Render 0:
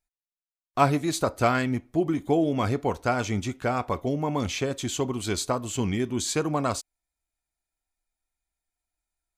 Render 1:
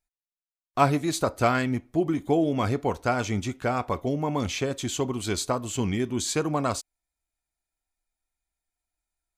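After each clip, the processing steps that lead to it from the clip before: nothing audible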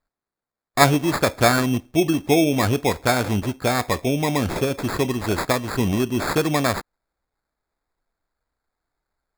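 sample-and-hold 15×; gain +5.5 dB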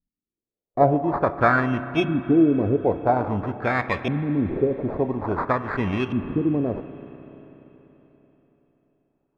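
LFO low-pass saw up 0.49 Hz 200–3000 Hz; spring tank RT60 4 s, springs 31/48 ms, chirp 75 ms, DRR 11.5 dB; gain -4 dB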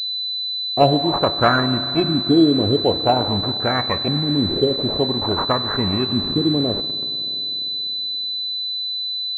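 in parallel at -8 dB: bit-crush 5-bit; on the sum: pulse-width modulation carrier 4000 Hz

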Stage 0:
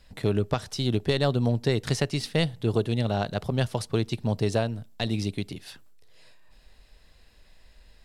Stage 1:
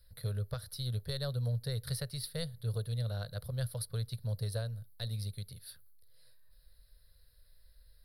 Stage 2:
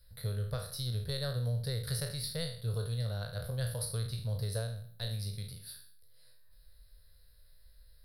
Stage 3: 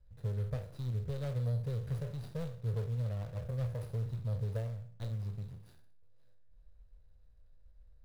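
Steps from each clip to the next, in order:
EQ curve 120 Hz 0 dB, 330 Hz -28 dB, 510 Hz -4 dB, 800 Hz -19 dB, 1500 Hz -5 dB, 2700 Hz -18 dB, 4300 Hz +2 dB, 7100 Hz -22 dB, 10000 Hz +11 dB; gain -6 dB
spectral trails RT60 0.54 s
median filter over 41 samples

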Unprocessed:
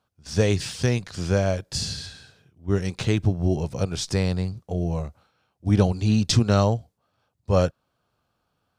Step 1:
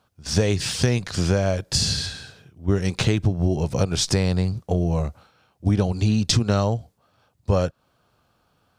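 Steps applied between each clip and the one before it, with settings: compressor 6:1, threshold -25 dBFS, peak gain reduction 12 dB; gain +8.5 dB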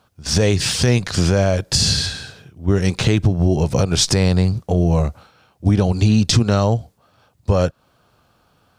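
limiter -12 dBFS, peak gain reduction 6 dB; gain +6.5 dB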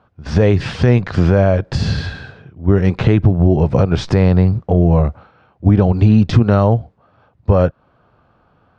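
LPF 1800 Hz 12 dB/oct; gain +4 dB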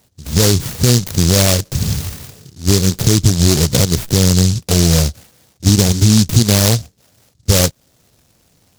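noise-modulated delay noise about 5300 Hz, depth 0.3 ms

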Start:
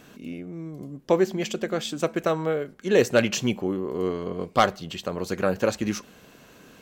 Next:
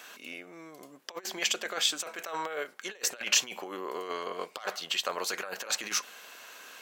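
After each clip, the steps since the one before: negative-ratio compressor -27 dBFS, ratio -0.5; HPF 940 Hz 12 dB/oct; gain +3 dB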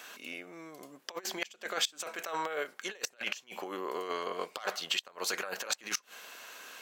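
flipped gate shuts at -17 dBFS, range -24 dB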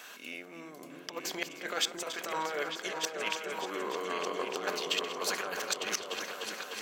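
regenerating reverse delay 0.152 s, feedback 48%, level -12.5 dB; repeats that get brighter 0.3 s, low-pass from 200 Hz, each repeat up 2 oct, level 0 dB

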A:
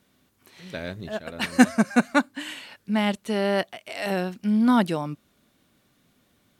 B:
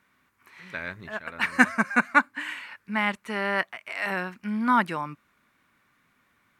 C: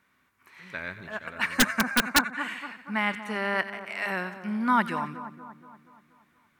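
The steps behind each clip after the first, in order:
band shelf 1500 Hz +13 dB; gain -7.5 dB
split-band echo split 1400 Hz, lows 0.237 s, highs 90 ms, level -12 dB; wrapped overs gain 9 dB; gain -1.5 dB

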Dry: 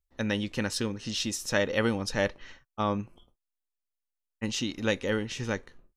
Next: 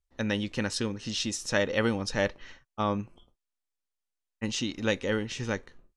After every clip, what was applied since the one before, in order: LPF 9700 Hz 24 dB/oct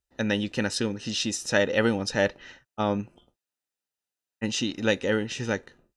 notch comb 1100 Hz; gain +4 dB

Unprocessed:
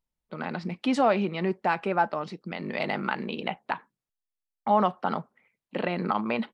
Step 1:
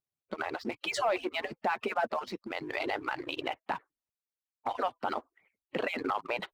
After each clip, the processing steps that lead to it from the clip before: median-filter separation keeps percussive; sample leveller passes 1; limiter -20.5 dBFS, peak gain reduction 10.5 dB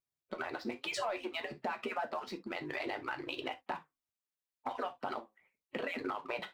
compressor 3:1, threshold -32 dBFS, peak gain reduction 6 dB; flange 0.85 Hz, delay 3.5 ms, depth 6.1 ms, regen +77%; non-linear reverb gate 90 ms falling, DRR 6.5 dB; gain +1.5 dB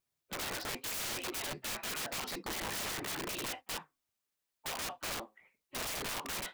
wrapped overs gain 39.5 dB; gain +6.5 dB

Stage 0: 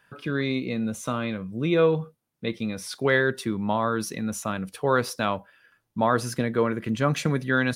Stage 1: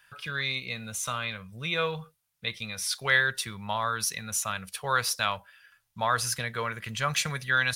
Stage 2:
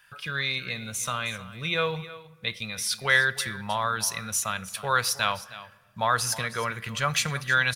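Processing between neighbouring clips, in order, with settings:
passive tone stack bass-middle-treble 10-0-10; gain +7 dB
echo 0.313 s -16 dB; on a send at -19 dB: reverb RT60 1.9 s, pre-delay 6 ms; on the sum: gain +2 dB

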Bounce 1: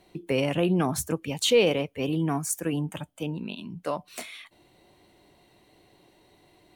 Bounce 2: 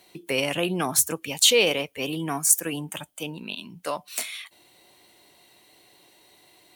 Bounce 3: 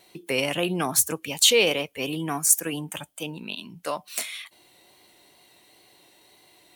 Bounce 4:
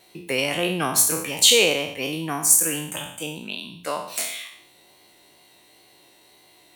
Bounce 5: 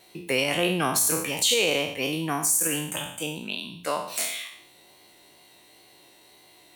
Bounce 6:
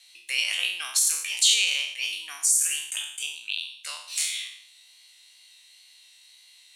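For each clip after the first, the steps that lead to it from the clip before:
tilt +3 dB/oct; gain +2 dB
wow and flutter 26 cents
spectral trails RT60 0.64 s
limiter -12 dBFS, peak gain reduction 10 dB
Butterworth band-pass 5100 Hz, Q 0.74; gain +4 dB

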